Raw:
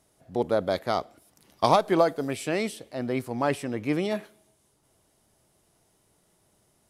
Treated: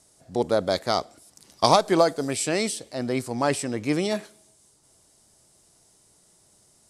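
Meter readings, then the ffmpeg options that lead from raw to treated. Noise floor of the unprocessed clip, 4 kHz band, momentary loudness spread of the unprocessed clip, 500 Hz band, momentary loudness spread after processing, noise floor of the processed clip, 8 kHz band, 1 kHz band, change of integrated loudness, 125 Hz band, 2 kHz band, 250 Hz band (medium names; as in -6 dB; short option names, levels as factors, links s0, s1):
-68 dBFS, +7.5 dB, 9 LU, +2.0 dB, 9 LU, -61 dBFS, +12.0 dB, +2.0 dB, +2.5 dB, +2.0 dB, +2.5 dB, +2.0 dB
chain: -af "aexciter=amount=1.5:drive=6.3:freq=4100,lowpass=f=7700:t=q:w=3,volume=1.26"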